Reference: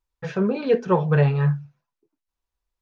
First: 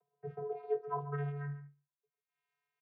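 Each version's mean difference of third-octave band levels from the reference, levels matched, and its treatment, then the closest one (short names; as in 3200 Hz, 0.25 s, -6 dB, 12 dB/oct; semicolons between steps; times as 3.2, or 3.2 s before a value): 7.5 dB: upward compressor, threshold -34 dBFS; vocoder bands 16, square 143 Hz; band-pass sweep 560 Hz -> 2200 Hz, 0.17–1.87; echo 0.14 s -14 dB; gain +5 dB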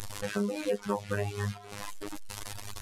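14.0 dB: delta modulation 64 kbps, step -29 dBFS; robotiser 102 Hz; reverb removal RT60 0.59 s; compressor 5:1, threshold -27 dBFS, peak gain reduction 10.5 dB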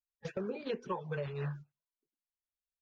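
4.0 dB: bin magnitudes rounded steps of 30 dB; gate -30 dBFS, range -16 dB; harmonic-percussive split harmonic -7 dB; compressor 10:1, threshold -29 dBFS, peak gain reduction 14 dB; gain -4.5 dB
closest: third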